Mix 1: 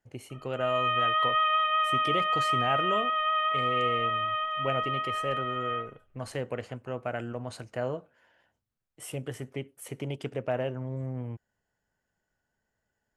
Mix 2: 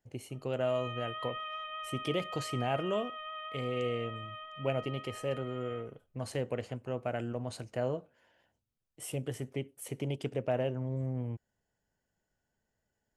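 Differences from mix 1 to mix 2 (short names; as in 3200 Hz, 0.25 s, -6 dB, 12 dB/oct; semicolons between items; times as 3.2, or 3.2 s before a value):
background -10.5 dB; master: add bell 1400 Hz -6 dB 1.4 oct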